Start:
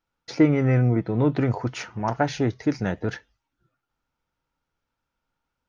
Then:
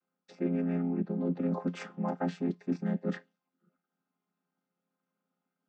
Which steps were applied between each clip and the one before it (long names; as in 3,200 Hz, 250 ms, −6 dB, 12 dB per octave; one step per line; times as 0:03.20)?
channel vocoder with a chord as carrier minor triad, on F3
reversed playback
downward compressor 6 to 1, threshold −28 dBFS, peak gain reduction 15.5 dB
reversed playback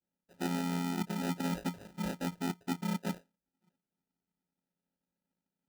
spectral tilt −2.5 dB per octave
sample-rate reduction 1,100 Hz, jitter 0%
level −8.5 dB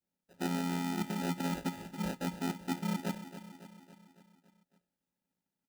repeating echo 278 ms, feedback 57%, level −12 dB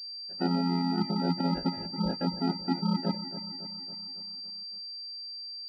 gate on every frequency bin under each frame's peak −20 dB strong
switching amplifier with a slow clock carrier 4,700 Hz
level +6.5 dB